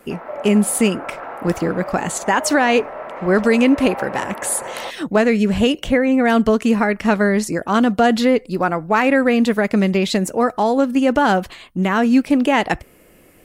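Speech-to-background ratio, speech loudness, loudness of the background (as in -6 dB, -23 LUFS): 13.5 dB, -17.5 LUFS, -31.0 LUFS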